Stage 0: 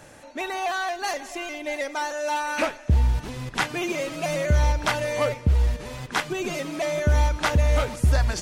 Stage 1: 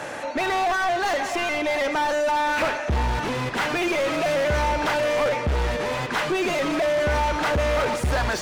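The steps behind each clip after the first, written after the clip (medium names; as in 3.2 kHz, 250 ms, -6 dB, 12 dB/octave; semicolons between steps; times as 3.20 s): overdrive pedal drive 32 dB, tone 1.7 kHz, clips at -10 dBFS; trim -4.5 dB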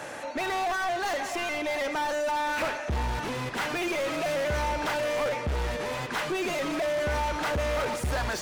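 treble shelf 7.8 kHz +6.5 dB; trim -6 dB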